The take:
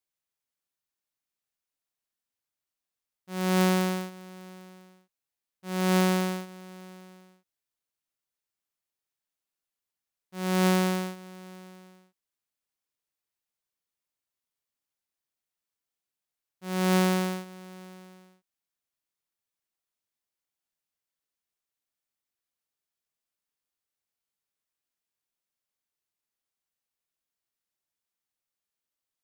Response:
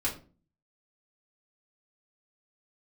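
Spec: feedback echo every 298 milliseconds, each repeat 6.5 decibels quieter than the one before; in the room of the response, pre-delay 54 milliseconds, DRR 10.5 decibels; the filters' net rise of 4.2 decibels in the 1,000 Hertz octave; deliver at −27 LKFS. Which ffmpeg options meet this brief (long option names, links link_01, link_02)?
-filter_complex "[0:a]equalizer=frequency=1000:width_type=o:gain=5.5,aecho=1:1:298|596|894|1192|1490|1788:0.473|0.222|0.105|0.0491|0.0231|0.0109,asplit=2[link_01][link_02];[1:a]atrim=start_sample=2205,adelay=54[link_03];[link_02][link_03]afir=irnorm=-1:irlink=0,volume=-16.5dB[link_04];[link_01][link_04]amix=inputs=2:normalize=0,volume=-1.5dB"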